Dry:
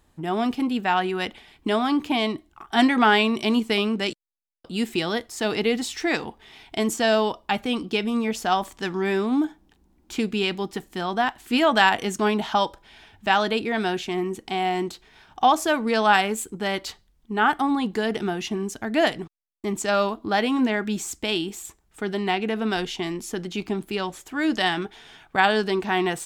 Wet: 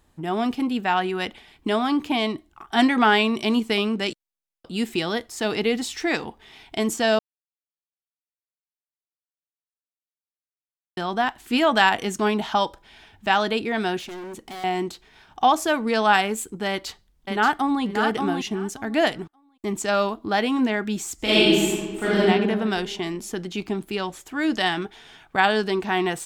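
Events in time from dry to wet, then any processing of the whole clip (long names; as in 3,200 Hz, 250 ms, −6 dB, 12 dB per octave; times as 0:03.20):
0:07.19–0:10.97: silence
0:13.99–0:14.64: gain into a clipping stage and back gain 34 dB
0:16.69–0:17.83: delay throw 580 ms, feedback 15%, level −4.5 dB
0:21.15–0:22.21: thrown reverb, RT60 1.6 s, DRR −10 dB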